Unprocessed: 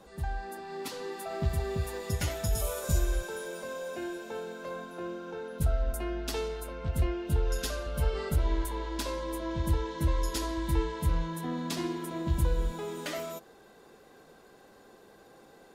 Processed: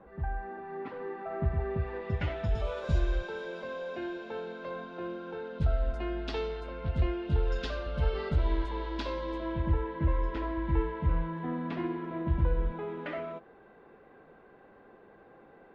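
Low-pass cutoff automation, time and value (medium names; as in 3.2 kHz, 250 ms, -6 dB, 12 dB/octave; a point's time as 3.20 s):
low-pass 24 dB/octave
1.55 s 2 kHz
2.98 s 4 kHz
9.34 s 4 kHz
9.74 s 2.4 kHz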